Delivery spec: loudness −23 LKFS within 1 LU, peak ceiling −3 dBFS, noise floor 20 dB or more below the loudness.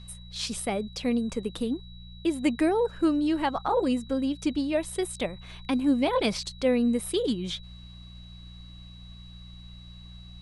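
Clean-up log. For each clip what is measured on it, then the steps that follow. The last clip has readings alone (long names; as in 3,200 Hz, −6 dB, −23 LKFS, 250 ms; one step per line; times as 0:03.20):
mains hum 60 Hz; hum harmonics up to 180 Hz; level of the hum −43 dBFS; interfering tone 3,900 Hz; level of the tone −51 dBFS; integrated loudness −28.0 LKFS; sample peak −11.5 dBFS; target loudness −23.0 LKFS
→ hum removal 60 Hz, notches 3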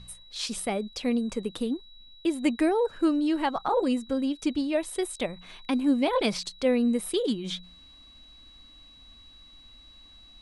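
mains hum none found; interfering tone 3,900 Hz; level of the tone −51 dBFS
→ notch filter 3,900 Hz, Q 30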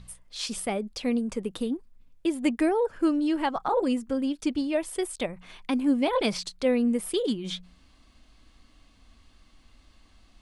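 interfering tone none found; integrated loudness −28.0 LKFS; sample peak −11.5 dBFS; target loudness −23.0 LKFS
→ level +5 dB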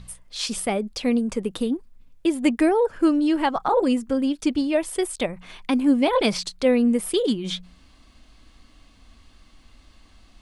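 integrated loudness −23.0 LKFS; sample peak −6.5 dBFS; background noise floor −54 dBFS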